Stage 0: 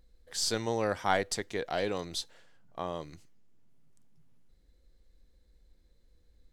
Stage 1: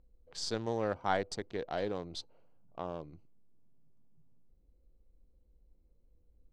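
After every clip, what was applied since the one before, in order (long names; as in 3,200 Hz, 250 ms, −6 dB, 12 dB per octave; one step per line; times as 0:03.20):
adaptive Wiener filter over 25 samples
low-pass filter 5,100 Hz 12 dB per octave
dynamic equaliser 2,400 Hz, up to −5 dB, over −49 dBFS, Q 1.3
level −2.5 dB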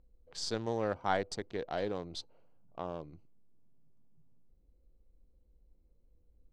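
no processing that can be heard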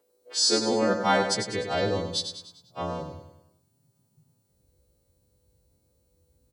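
every partial snapped to a pitch grid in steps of 2 semitones
high-pass filter sweep 420 Hz → 99 Hz, 0:00.09–0:01.72
repeating echo 99 ms, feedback 48%, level −7.5 dB
level +7.5 dB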